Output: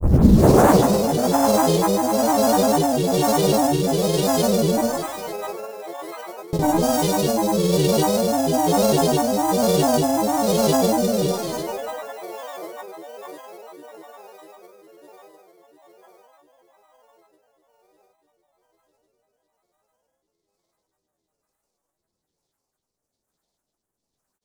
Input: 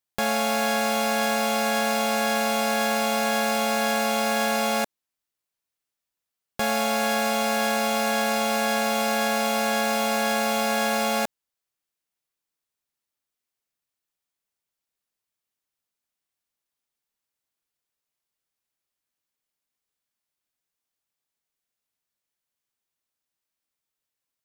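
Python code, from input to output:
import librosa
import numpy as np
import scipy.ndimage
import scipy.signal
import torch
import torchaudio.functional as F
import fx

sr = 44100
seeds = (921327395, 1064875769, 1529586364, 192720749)

p1 = fx.tape_start_head(x, sr, length_s=0.76)
p2 = fx.tilt_shelf(p1, sr, db=4.0, hz=680.0)
p3 = fx.echo_wet_bandpass(p2, sr, ms=675, feedback_pct=65, hz=1300.0, wet_db=-6.0)
p4 = fx.rev_schroeder(p3, sr, rt60_s=1.5, comb_ms=26, drr_db=-5.5)
p5 = fx.rotary(p4, sr, hz=1.1)
p6 = 10.0 ** (-23.5 / 20.0) * np.tanh(p5 / 10.0 ** (-23.5 / 20.0))
p7 = p5 + (p6 * 10.0 ** (-5.5 / 20.0))
p8 = fx.sample_hold(p7, sr, seeds[0], rate_hz=18000.0, jitter_pct=0)
p9 = fx.band_shelf(p8, sr, hz=2400.0, db=-13.5, octaves=1.7)
p10 = fx.granulator(p9, sr, seeds[1], grain_ms=100.0, per_s=20.0, spray_ms=100.0, spread_st=7)
y = p10 * 10.0 ** (4.5 / 20.0)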